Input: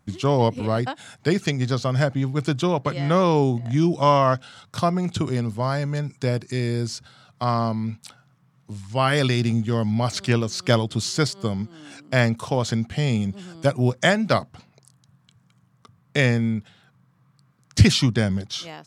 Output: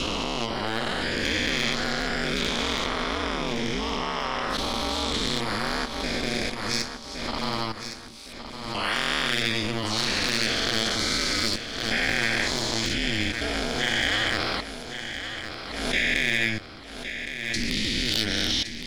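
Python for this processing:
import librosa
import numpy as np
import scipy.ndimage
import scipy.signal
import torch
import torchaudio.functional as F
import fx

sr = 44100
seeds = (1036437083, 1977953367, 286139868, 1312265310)

p1 = fx.spec_dilate(x, sr, span_ms=480)
p2 = fx.high_shelf(p1, sr, hz=3800.0, db=9.5)
p3 = fx.level_steps(p2, sr, step_db=19)
p4 = fx.graphic_eq(p3, sr, hz=(500, 1000, 2000, 4000, 8000), db=(-3, -4, 7, 6, -5))
p5 = np.clip(p4, -10.0 ** (-7.0 / 20.0), 10.0 ** (-7.0 / 20.0))
p6 = p5 * np.sin(2.0 * np.pi * 110.0 * np.arange(len(p5)) / sr)
p7 = p6 + fx.echo_feedback(p6, sr, ms=1114, feedback_pct=42, wet_db=-9.5, dry=0)
p8 = fx.pre_swell(p7, sr, db_per_s=46.0)
y = p8 * librosa.db_to_amplitude(-6.0)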